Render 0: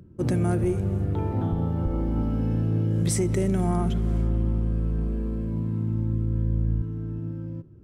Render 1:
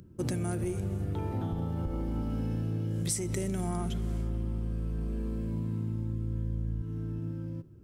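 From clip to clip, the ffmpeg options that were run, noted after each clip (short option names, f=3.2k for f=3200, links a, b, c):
-af "highshelf=f=2.9k:g=11.5,acompressor=threshold=-25dB:ratio=6,volume=-3.5dB"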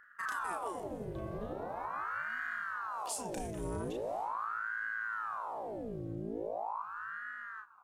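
-filter_complex "[0:a]asplit=2[a][b];[b]adelay=34,volume=-3.5dB[c];[a][c]amix=inputs=2:normalize=0,aeval=exprs='val(0)*sin(2*PI*900*n/s+900*0.75/0.41*sin(2*PI*0.41*n/s))':c=same,volume=-6dB"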